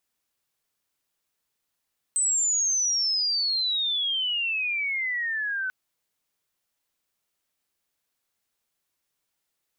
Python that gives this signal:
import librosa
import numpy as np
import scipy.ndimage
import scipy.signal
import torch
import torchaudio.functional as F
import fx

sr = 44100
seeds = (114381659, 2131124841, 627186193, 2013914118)

y = fx.chirp(sr, length_s=3.54, from_hz=8200.0, to_hz=1500.0, law='logarithmic', from_db=-20.5, to_db=-26.0)